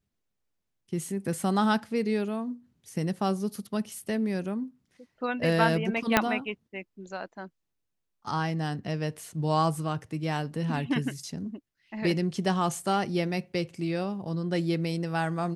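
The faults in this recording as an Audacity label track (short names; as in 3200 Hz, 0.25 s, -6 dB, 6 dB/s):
6.170000	6.170000	pop -4 dBFS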